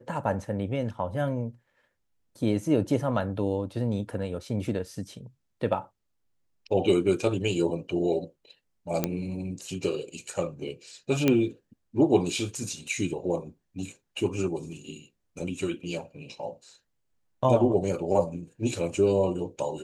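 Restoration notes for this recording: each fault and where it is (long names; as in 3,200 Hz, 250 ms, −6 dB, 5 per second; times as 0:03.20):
0:09.04: click −10 dBFS
0:11.28: click −9 dBFS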